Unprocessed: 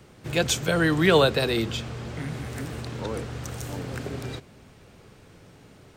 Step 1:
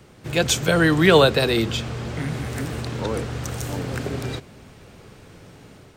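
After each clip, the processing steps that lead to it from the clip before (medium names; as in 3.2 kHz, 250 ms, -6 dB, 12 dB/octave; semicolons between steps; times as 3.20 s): level rider gain up to 3.5 dB; trim +2 dB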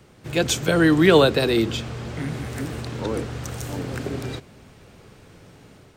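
dynamic bell 310 Hz, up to +6 dB, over -33 dBFS, Q 1.7; trim -2.5 dB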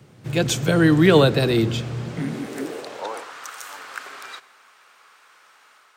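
high-pass sweep 120 Hz -> 1.2 kHz, 1.98–3.37 s; on a send at -18.5 dB: reverberation RT60 1.8 s, pre-delay 76 ms; on the sum: trim -1 dB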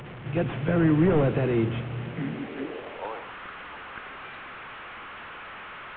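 one-bit delta coder 16 kbps, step -30 dBFS; trim -4.5 dB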